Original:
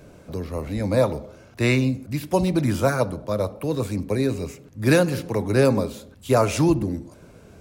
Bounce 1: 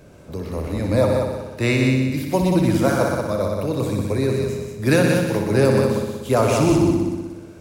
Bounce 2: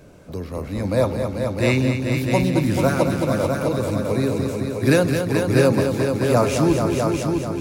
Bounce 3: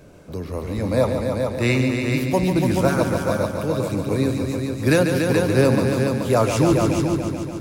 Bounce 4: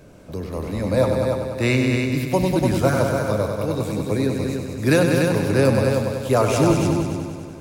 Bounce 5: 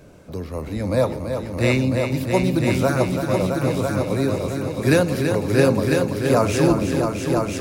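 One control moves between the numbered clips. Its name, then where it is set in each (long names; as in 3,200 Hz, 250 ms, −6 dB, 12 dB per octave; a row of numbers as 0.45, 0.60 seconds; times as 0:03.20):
echo machine with several playback heads, delay time: 61, 218, 143, 97, 333 milliseconds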